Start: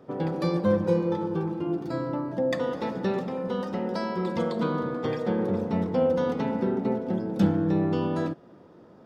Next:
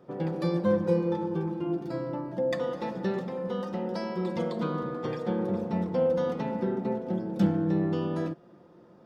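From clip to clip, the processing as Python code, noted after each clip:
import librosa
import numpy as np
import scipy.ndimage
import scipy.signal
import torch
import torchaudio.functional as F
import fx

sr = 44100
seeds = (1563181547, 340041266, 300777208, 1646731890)

y = x + 0.38 * np.pad(x, (int(5.7 * sr / 1000.0), 0))[:len(x)]
y = y * 10.0 ** (-4.0 / 20.0)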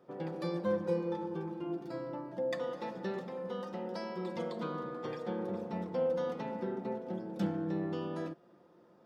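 y = fx.low_shelf(x, sr, hz=200.0, db=-9.5)
y = y * 10.0 ** (-5.0 / 20.0)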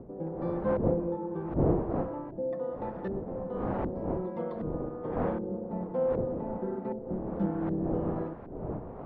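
y = fx.dmg_wind(x, sr, seeds[0], corner_hz=610.0, level_db=-38.0)
y = fx.filter_lfo_lowpass(y, sr, shape='saw_up', hz=1.3, low_hz=410.0, high_hz=1600.0, q=0.82)
y = y * 10.0 ** (3.0 / 20.0)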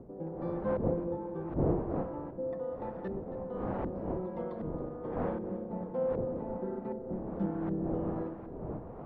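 y = fx.echo_feedback(x, sr, ms=273, feedback_pct=53, wet_db=-15)
y = y * 10.0 ** (-3.5 / 20.0)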